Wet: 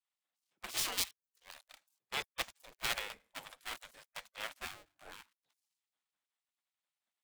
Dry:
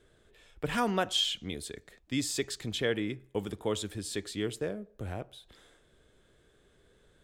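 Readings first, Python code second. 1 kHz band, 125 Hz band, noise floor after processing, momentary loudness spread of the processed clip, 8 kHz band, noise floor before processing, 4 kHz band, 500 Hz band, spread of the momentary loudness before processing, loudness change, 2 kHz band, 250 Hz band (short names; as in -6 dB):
-8.5 dB, -22.5 dB, under -85 dBFS, 20 LU, -3.5 dB, -66 dBFS, -7.5 dB, -18.5 dB, 12 LU, -6.5 dB, -3.5 dB, -25.5 dB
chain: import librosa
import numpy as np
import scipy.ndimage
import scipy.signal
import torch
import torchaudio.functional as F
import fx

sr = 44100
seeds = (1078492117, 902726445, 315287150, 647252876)

y = fx.dead_time(x, sr, dead_ms=0.2)
y = fx.spec_gate(y, sr, threshold_db=-20, keep='weak')
y = fx.band_widen(y, sr, depth_pct=70)
y = y * 10.0 ** (1.0 / 20.0)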